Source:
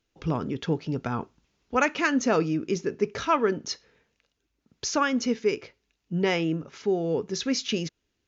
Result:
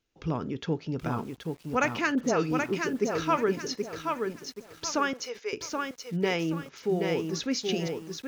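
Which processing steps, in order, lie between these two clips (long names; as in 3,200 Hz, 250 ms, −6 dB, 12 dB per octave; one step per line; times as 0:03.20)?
0:02.15–0:02.89: all-pass dispersion highs, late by 74 ms, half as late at 1,800 Hz
0:05.13–0:05.53: high-pass filter 510 Hz 24 dB per octave
feedback echo at a low word length 777 ms, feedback 35%, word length 8 bits, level −4.5 dB
level −3 dB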